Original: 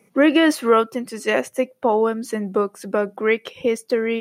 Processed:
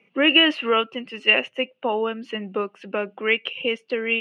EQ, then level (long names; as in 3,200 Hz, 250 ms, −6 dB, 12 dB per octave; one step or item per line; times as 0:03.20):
high-pass filter 140 Hz
low-pass with resonance 2,800 Hz, resonance Q 11
−6.0 dB